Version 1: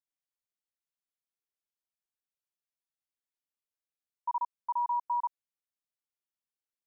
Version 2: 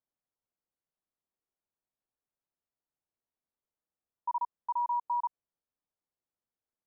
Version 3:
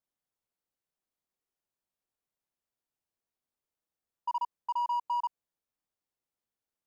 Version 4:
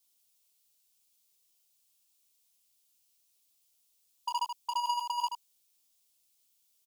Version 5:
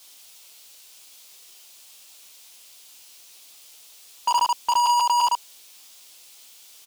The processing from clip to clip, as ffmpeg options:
ffmpeg -i in.wav -filter_complex "[0:a]lowpass=1000,asplit=2[link_01][link_02];[link_02]alimiter=level_in=16.5dB:limit=-24dB:level=0:latency=1,volume=-16.5dB,volume=1dB[link_03];[link_01][link_03]amix=inputs=2:normalize=0" out.wav
ffmpeg -i in.wav -af "acontrast=87,asoftclip=type=hard:threshold=-20.5dB,volume=-6.5dB" out.wav
ffmpeg -i in.wav -af "aexciter=amount=6.1:drive=5.6:freq=2500,aecho=1:1:13|79:0.531|0.447" out.wav
ffmpeg -i in.wav -filter_complex "[0:a]asplit=2[link_01][link_02];[link_02]highpass=frequency=720:poles=1,volume=30dB,asoftclip=type=tanh:threshold=-22dB[link_03];[link_01][link_03]amix=inputs=2:normalize=0,lowpass=frequency=3100:poles=1,volume=-6dB,volume=8.5dB" out.wav

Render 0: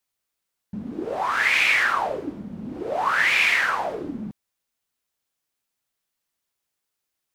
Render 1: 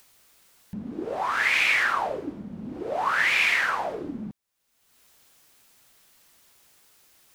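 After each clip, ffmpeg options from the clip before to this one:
ffmpeg -i in.wav -af "acompressor=mode=upward:threshold=-36dB:ratio=2.5,volume=-2.5dB" out.wav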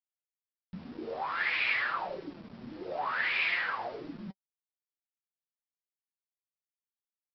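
ffmpeg -i in.wav -af "flanger=delay=5.6:depth=3.3:regen=56:speed=1.4:shape=sinusoidal,aresample=11025,aeval=exprs='val(0)*gte(abs(val(0)),0.00631)':channel_layout=same,aresample=44100,flanger=delay=5.2:depth=7.7:regen=44:speed=0.46:shape=sinusoidal" out.wav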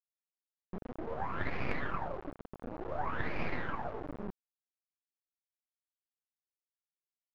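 ffmpeg -i in.wav -af "acrusher=bits=4:dc=4:mix=0:aa=0.000001,aeval=exprs='0.282*(cos(1*acos(clip(val(0)/0.282,-1,1)))-cos(1*PI/2))+0.0158*(cos(7*acos(clip(val(0)/0.282,-1,1)))-cos(7*PI/2))':channel_layout=same,lowpass=1100,volume=7.5dB" out.wav

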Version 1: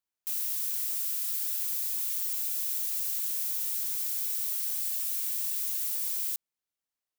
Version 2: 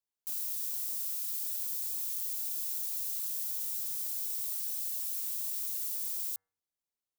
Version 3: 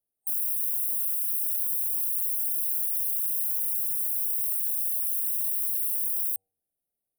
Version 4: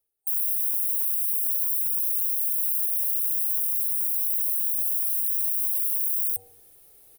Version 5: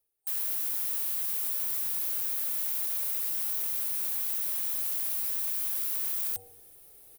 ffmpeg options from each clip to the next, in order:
ffmpeg -i in.wav -filter_complex "[0:a]bandreject=frequency=95.89:width_type=h:width=4,bandreject=frequency=191.78:width_type=h:width=4,bandreject=frequency=287.67:width_type=h:width=4,bandreject=frequency=383.56:width_type=h:width=4,bandreject=frequency=479.45:width_type=h:width=4,bandreject=frequency=575.34:width_type=h:width=4,bandreject=frequency=671.23:width_type=h:width=4,bandreject=frequency=767.12:width_type=h:width=4,bandreject=frequency=863.01:width_type=h:width=4,bandreject=frequency=958.9:width_type=h:width=4,bandreject=frequency=1054.79:width_type=h:width=4,bandreject=frequency=1150.68:width_type=h:width=4,bandreject=frequency=1246.57:width_type=h:width=4,bandreject=frequency=1342.46:width_type=h:width=4,bandreject=frequency=1438.35:width_type=h:width=4,bandreject=frequency=1534.24:width_type=h:width=4,bandreject=frequency=1630.13:width_type=h:width=4,bandreject=frequency=1726.02:width_type=h:width=4,bandreject=frequency=1821.91:width_type=h:width=4,bandreject=frequency=1917.8:width_type=h:width=4,bandreject=frequency=2013.69:width_type=h:width=4,bandreject=frequency=2109.58:width_type=h:width=4,acrossover=split=200|1600|2600[link_01][link_02][link_03][link_04];[link_03]acrusher=samples=27:mix=1:aa=0.000001[link_05];[link_01][link_02][link_05][link_04]amix=inputs=4:normalize=0,volume=-4dB" out.wav
ffmpeg -i in.wav -af "afftfilt=real='re*(1-between(b*sr/4096,790,8600))':imag='im*(1-between(b*sr/4096,790,8600))':win_size=4096:overlap=0.75,volume=8dB" out.wav
ffmpeg -i in.wav -af "highshelf=frequency=10000:gain=3,aecho=1:1:2.3:0.73,areverse,acompressor=mode=upward:threshold=-27dB:ratio=2.5,areverse,volume=-2dB" out.wav
ffmpeg -i in.wav -af "asoftclip=type=tanh:threshold=-28dB" out.wav

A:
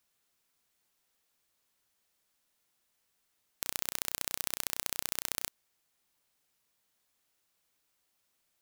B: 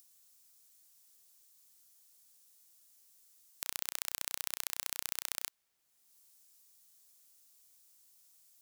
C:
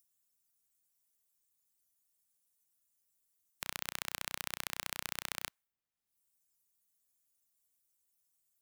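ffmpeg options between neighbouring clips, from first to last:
ffmpeg -i in.wav -filter_complex "[0:a]acrossover=split=800|5000[link_01][link_02][link_03];[link_01]alimiter=level_in=17dB:limit=-24dB:level=0:latency=1:release=273,volume=-17dB[link_04];[link_03]acompressor=mode=upward:threshold=-47dB:ratio=2.5[link_05];[link_04][link_02][link_05]amix=inputs=3:normalize=0,volume=-2.5dB" out.wav
ffmpeg -i in.wav -af "afftdn=noise_reduction=18:noise_floor=-66,bass=frequency=250:gain=7,treble=frequency=4000:gain=-10,volume=5dB" out.wav

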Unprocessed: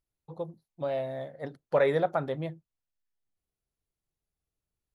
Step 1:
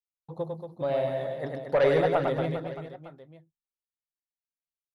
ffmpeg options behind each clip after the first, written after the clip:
ffmpeg -i in.wav -af "aeval=exprs='0.211*sin(PI/2*1.41*val(0)/0.211)':channel_layout=same,agate=range=-33dB:threshold=-47dB:ratio=3:detection=peak,aecho=1:1:100|230|399|618.7|904.3:0.631|0.398|0.251|0.158|0.1,volume=-4dB" out.wav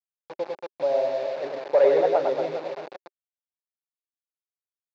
ffmpeg -i in.wav -af "aresample=16000,acrusher=bits=5:mix=0:aa=0.000001,aresample=44100,highpass=380,equalizer=frequency=390:width_type=q:width=4:gain=6,equalizer=frequency=580:width_type=q:width=4:gain=6,equalizer=frequency=850:width_type=q:width=4:gain=4,equalizer=frequency=1300:width_type=q:width=4:gain=-5,equalizer=frequency=1900:width_type=q:width=4:gain=-5,equalizer=frequency=3100:width_type=q:width=4:gain=-9,lowpass=frequency=4000:width=0.5412,lowpass=frequency=4000:width=1.3066" out.wav

